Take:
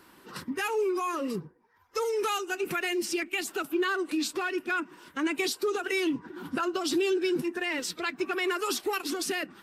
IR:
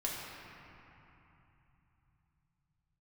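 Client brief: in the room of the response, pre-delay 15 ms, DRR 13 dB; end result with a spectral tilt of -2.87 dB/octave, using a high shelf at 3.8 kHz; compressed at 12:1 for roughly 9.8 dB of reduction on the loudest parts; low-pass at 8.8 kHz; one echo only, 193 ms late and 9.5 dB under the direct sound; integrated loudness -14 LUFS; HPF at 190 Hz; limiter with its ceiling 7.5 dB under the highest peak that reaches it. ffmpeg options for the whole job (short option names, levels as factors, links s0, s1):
-filter_complex "[0:a]highpass=190,lowpass=8800,highshelf=f=3800:g=-4,acompressor=threshold=0.02:ratio=12,alimiter=level_in=2.37:limit=0.0631:level=0:latency=1,volume=0.422,aecho=1:1:193:0.335,asplit=2[s0][s1];[1:a]atrim=start_sample=2205,adelay=15[s2];[s1][s2]afir=irnorm=-1:irlink=0,volume=0.141[s3];[s0][s3]amix=inputs=2:normalize=0,volume=17.8"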